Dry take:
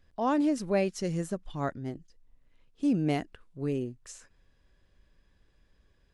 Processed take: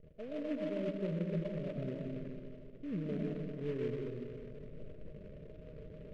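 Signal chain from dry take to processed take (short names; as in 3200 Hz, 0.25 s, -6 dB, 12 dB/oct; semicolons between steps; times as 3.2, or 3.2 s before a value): zero-crossing step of -39.5 dBFS; low shelf 310 Hz -10.5 dB; reverse; compressor 6:1, threshold -40 dBFS, peak gain reduction 14.5 dB; reverse; rippled Chebyshev low-pass 640 Hz, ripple 9 dB; reverb RT60 2.4 s, pre-delay 70 ms, DRR -1.5 dB; noise-modulated delay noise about 1800 Hz, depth 0.038 ms; gain +8 dB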